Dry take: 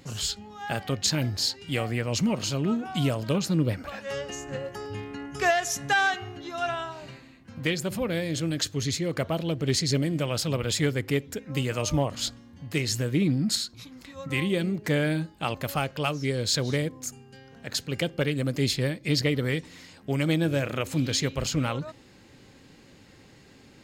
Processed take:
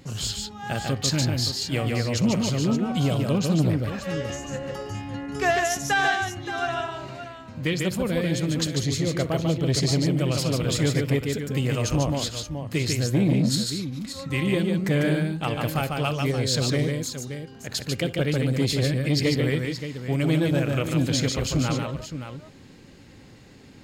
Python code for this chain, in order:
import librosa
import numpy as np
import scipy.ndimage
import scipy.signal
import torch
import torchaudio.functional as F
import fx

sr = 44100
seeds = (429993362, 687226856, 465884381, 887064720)

p1 = fx.low_shelf(x, sr, hz=330.0, db=4.5)
p2 = p1 + fx.echo_multitap(p1, sr, ms=(62, 146, 573), db=(-18.5, -4.0, -10.5), dry=0)
y = fx.transformer_sat(p2, sr, knee_hz=260.0)